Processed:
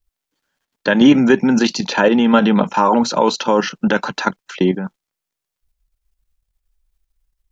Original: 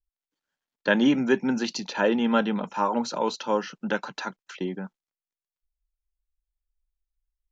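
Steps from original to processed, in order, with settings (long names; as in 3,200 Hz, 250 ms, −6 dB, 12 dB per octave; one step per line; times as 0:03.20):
parametric band 100 Hz +2 dB 2.6 octaves
output level in coarse steps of 10 dB
boost into a limiter +18 dB
level −1 dB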